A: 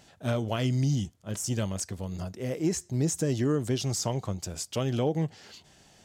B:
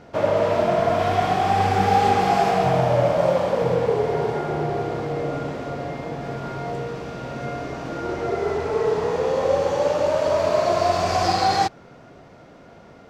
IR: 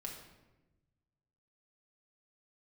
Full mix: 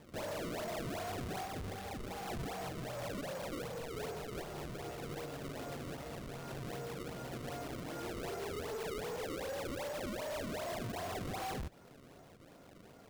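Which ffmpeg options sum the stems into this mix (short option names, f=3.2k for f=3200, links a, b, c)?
-filter_complex "[0:a]asplit=3[a][b][c];[a]bandpass=f=270:t=q:w=8,volume=0dB[d];[b]bandpass=f=2.29k:t=q:w=8,volume=-6dB[e];[c]bandpass=f=3.01k:t=q:w=8,volume=-9dB[f];[d][e][f]amix=inputs=3:normalize=0,equalizer=f=250:w=1.8:g=-13,aeval=exprs='val(0)*sgn(sin(2*PI*330*n/s))':c=same,adelay=1200,volume=0.5dB[g];[1:a]acompressor=threshold=-28dB:ratio=1.5,asoftclip=type=hard:threshold=-27dB,volume=-10.5dB[h];[g][h]amix=inputs=2:normalize=0,acrusher=samples=30:mix=1:aa=0.000001:lfo=1:lforange=48:lforate=2.6,alimiter=level_in=14dB:limit=-24dB:level=0:latency=1:release=110,volume=-14dB"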